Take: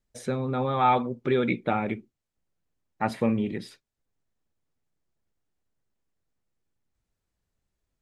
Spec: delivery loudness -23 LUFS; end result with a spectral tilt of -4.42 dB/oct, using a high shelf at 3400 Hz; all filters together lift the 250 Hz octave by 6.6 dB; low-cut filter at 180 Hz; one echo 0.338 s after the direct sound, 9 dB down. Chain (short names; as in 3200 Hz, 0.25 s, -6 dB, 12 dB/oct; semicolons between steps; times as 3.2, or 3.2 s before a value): HPF 180 Hz; bell 250 Hz +9 dB; high shelf 3400 Hz -8 dB; echo 0.338 s -9 dB; gain +0.5 dB